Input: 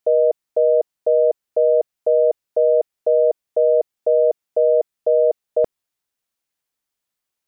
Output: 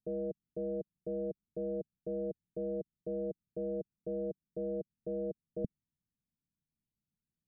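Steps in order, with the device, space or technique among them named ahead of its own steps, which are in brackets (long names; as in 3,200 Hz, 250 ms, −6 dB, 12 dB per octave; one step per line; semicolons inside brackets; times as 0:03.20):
overdriven synthesiser ladder filter (soft clipping −15 dBFS, distortion −14 dB; transistor ladder low-pass 230 Hz, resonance 40%)
level +13 dB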